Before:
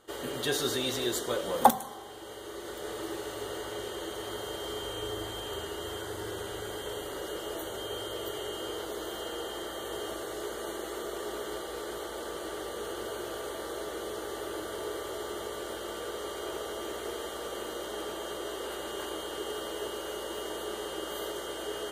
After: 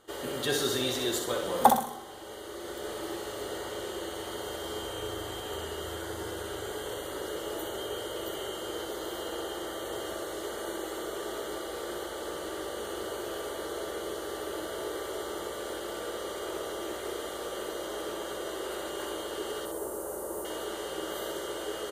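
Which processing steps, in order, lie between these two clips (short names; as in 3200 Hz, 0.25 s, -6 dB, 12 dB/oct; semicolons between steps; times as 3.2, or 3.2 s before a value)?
19.65–20.45 EQ curve 980 Hz 0 dB, 3200 Hz -21 dB, 9600 Hz +6 dB; feedback echo 63 ms, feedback 41%, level -6.5 dB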